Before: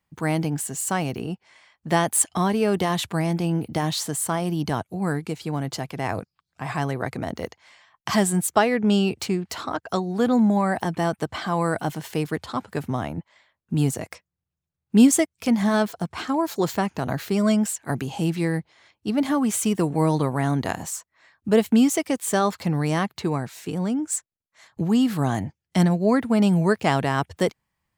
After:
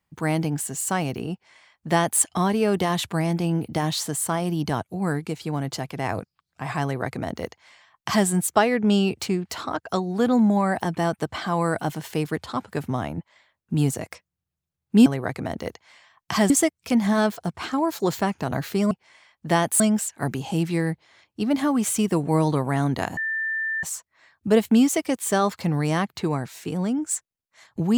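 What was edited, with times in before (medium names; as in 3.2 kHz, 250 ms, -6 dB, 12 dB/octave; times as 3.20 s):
1.32–2.21 s: copy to 17.47 s
6.83–8.27 s: copy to 15.06 s
20.84 s: add tone 1.78 kHz -23.5 dBFS 0.66 s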